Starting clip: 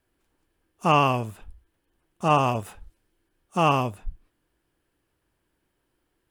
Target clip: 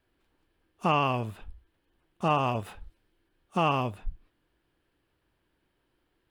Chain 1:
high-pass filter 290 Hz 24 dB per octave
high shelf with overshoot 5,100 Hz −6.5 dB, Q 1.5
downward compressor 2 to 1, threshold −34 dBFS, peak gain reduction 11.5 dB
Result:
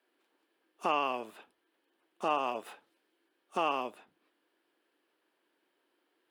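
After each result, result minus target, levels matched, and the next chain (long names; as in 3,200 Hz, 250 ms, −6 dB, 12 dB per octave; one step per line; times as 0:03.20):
downward compressor: peak gain reduction +4.5 dB; 250 Hz band −4.5 dB
high-pass filter 290 Hz 24 dB per octave
high shelf with overshoot 5,100 Hz −6.5 dB, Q 1.5
downward compressor 2 to 1, threshold −25.5 dBFS, peak gain reduction 7 dB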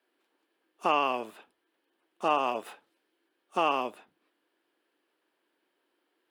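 250 Hz band −4.5 dB
high shelf with overshoot 5,100 Hz −6.5 dB, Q 1.5
downward compressor 2 to 1, threshold −25.5 dBFS, peak gain reduction 6.5 dB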